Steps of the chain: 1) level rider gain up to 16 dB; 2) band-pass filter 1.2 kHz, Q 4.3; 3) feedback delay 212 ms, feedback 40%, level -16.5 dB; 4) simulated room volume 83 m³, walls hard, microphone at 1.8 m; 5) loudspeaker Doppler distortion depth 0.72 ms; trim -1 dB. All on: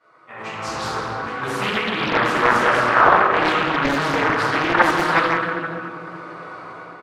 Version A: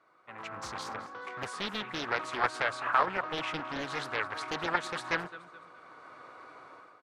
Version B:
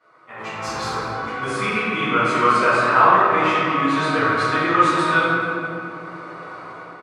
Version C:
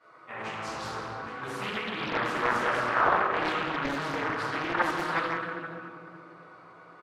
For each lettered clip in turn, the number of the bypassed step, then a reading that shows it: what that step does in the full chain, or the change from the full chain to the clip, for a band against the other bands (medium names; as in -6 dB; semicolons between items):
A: 4, crest factor change +5.0 dB; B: 5, 4 kHz band -2.5 dB; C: 1, momentary loudness spread change -5 LU